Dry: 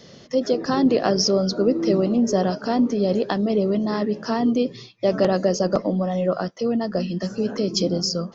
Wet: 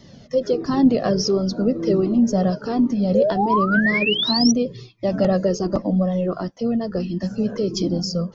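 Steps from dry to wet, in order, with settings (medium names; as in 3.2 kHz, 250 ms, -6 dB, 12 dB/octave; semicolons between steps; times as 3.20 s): painted sound rise, 3.14–4.52 s, 490–6000 Hz -18 dBFS; bass shelf 390 Hz +10.5 dB; Shepard-style flanger falling 1.4 Hz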